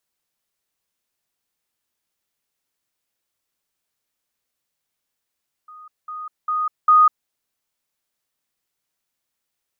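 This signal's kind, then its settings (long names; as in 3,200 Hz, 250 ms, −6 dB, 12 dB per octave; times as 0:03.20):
level staircase 1,240 Hz −39 dBFS, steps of 10 dB, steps 4, 0.20 s 0.20 s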